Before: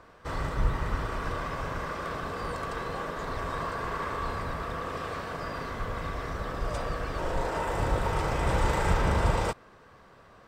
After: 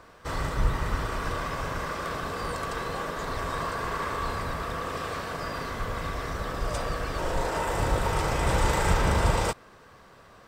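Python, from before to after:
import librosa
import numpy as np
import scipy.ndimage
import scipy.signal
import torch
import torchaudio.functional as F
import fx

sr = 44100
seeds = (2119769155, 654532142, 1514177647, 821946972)

y = fx.high_shelf(x, sr, hz=4000.0, db=7.5)
y = y * librosa.db_to_amplitude(1.5)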